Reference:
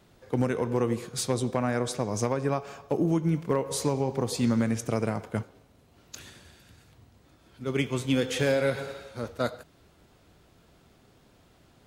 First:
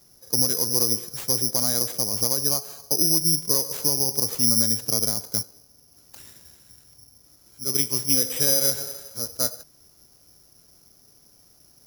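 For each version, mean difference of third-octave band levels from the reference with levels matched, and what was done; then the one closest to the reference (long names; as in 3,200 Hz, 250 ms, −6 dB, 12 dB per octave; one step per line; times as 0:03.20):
11.0 dB: high-shelf EQ 3,000 Hz −11.5 dB
bad sample-rate conversion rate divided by 8×, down none, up zero stuff
level −4.5 dB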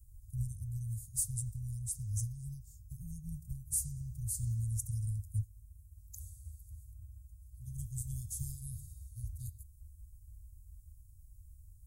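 18.5 dB: inverse Chebyshev band-stop filter 310–2,500 Hz, stop band 70 dB
low-shelf EQ 180 Hz +10 dB
level +5 dB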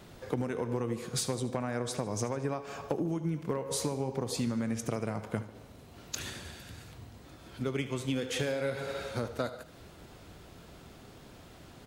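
7.0 dB: downward compressor 6 to 1, threshold −38 dBFS, peak gain reduction 16 dB
on a send: repeating echo 75 ms, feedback 45%, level −15 dB
on the sum: level +7.5 dB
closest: third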